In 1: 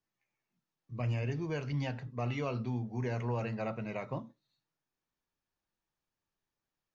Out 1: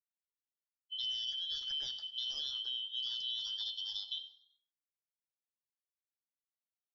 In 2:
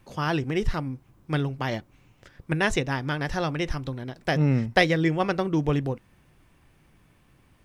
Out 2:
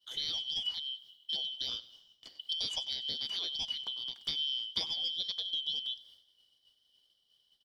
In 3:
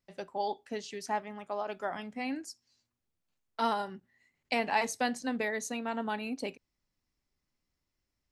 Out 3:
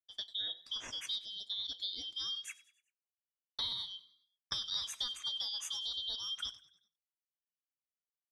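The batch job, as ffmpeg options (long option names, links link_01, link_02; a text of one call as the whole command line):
ffmpeg -i in.wav -filter_complex "[0:a]afftfilt=real='real(if(lt(b,272),68*(eq(floor(b/68),0)*2+eq(floor(b/68),1)*3+eq(floor(b/68),2)*0+eq(floor(b/68),3)*1)+mod(b,68),b),0)':imag='imag(if(lt(b,272),68*(eq(floor(b/68),0)*2+eq(floor(b/68),1)*3+eq(floor(b/68),2)*0+eq(floor(b/68),3)*1)+mod(b,68),b),0)':win_size=2048:overlap=0.75,agate=range=-33dB:threshold=-49dB:ratio=3:detection=peak,acompressor=threshold=-37dB:ratio=3,asplit=2[link_01][link_02];[link_02]asplit=4[link_03][link_04][link_05][link_06];[link_03]adelay=96,afreqshift=38,volume=-19dB[link_07];[link_04]adelay=192,afreqshift=76,volume=-25.6dB[link_08];[link_05]adelay=288,afreqshift=114,volume=-32.1dB[link_09];[link_06]adelay=384,afreqshift=152,volume=-38.7dB[link_10];[link_07][link_08][link_09][link_10]amix=inputs=4:normalize=0[link_11];[link_01][link_11]amix=inputs=2:normalize=0" out.wav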